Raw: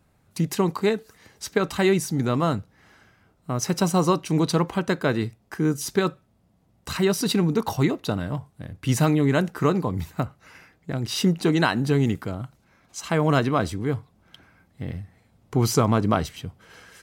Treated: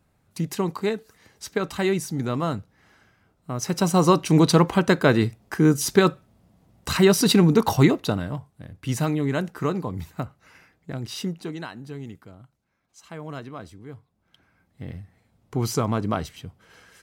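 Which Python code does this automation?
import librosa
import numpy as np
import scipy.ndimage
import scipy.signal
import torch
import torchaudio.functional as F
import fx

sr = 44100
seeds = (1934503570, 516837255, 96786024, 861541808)

y = fx.gain(x, sr, db=fx.line((3.57, -3.0), (4.23, 5.0), (7.89, 5.0), (8.47, -4.0), (11.0, -4.0), (11.69, -15.5), (13.88, -15.5), (14.83, -4.0)))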